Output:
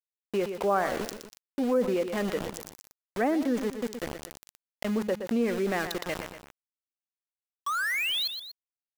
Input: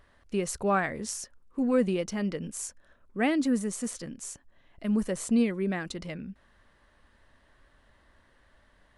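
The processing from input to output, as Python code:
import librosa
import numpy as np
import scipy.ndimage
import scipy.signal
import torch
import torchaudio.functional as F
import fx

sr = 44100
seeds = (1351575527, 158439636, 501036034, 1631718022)

y = scipy.signal.sosfilt(scipy.signal.butter(2, 460.0, 'highpass', fs=sr, output='sos'), x)
y = fx.env_lowpass_down(y, sr, base_hz=1300.0, full_db=-26.0)
y = scipy.signal.sosfilt(scipy.signal.butter(4, 8200.0, 'lowpass', fs=sr, output='sos'), y)
y = fx.tilt_eq(y, sr, slope=-2.5)
y = fx.spec_paint(y, sr, seeds[0], shape='rise', start_s=7.66, length_s=0.62, low_hz=1100.0, high_hz=4400.0, level_db=-35.0)
y = np.where(np.abs(y) >= 10.0 ** (-39.5 / 20.0), y, 0.0)
y = fx.echo_feedback(y, sr, ms=120, feedback_pct=24, wet_db=-16.0)
y = fx.env_flatten(y, sr, amount_pct=50)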